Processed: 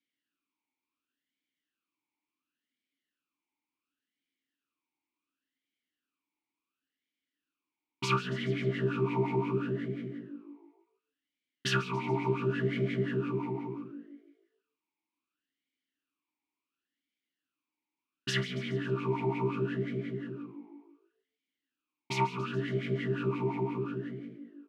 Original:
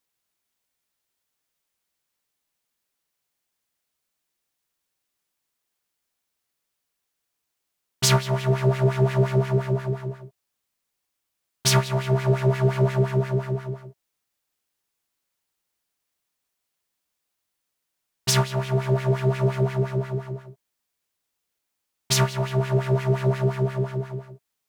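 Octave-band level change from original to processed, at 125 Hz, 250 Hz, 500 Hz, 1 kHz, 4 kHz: −13.0, −4.0, −8.0, −5.5, −10.5 decibels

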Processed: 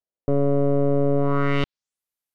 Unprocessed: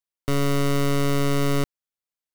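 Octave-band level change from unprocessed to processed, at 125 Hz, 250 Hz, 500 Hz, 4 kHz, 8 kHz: +0.5 dB, +1.5 dB, +5.0 dB, −7.5 dB, below −25 dB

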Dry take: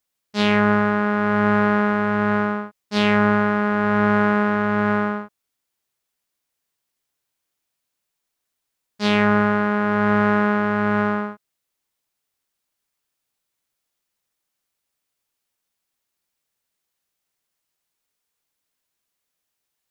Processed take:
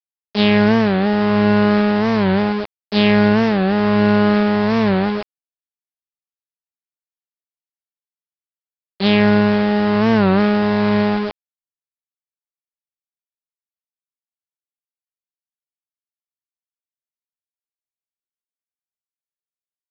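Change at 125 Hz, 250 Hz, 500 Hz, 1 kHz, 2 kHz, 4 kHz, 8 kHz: +5.5 dB, +5.5 dB, +4.5 dB, −0.5 dB, −1.0 dB, +6.5 dB, can't be measured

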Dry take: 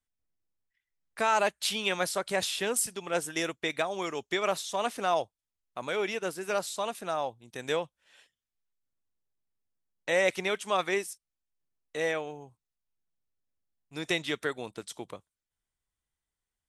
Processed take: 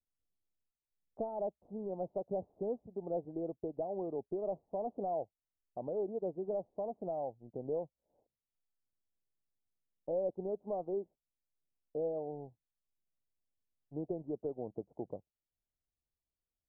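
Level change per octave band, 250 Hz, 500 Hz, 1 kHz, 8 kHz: −4.0 dB, −5.5 dB, −12.5 dB, below −40 dB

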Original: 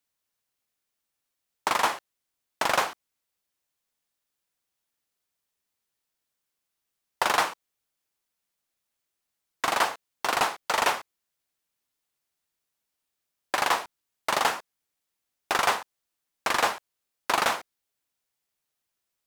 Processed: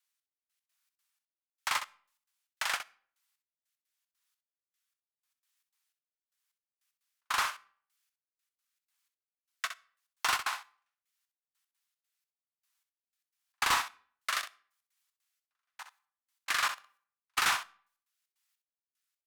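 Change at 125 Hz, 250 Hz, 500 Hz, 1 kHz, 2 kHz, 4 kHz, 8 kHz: −11.5, −17.5, −20.0, −9.5, −5.5, −4.5, −4.5 decibels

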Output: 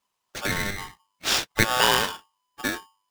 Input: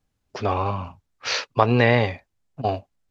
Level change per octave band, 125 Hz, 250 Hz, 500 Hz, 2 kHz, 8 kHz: −11.0 dB, −6.5 dB, −8.5 dB, +2.0 dB, can't be measured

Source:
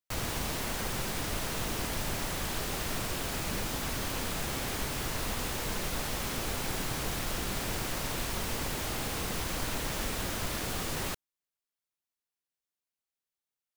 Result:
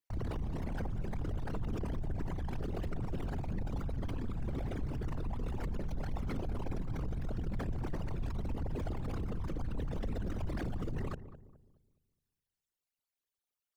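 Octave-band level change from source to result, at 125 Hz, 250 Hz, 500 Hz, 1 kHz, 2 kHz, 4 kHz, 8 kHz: +1.5, −1.5, −5.5, −10.0, −15.5, −22.0, −28.0 decibels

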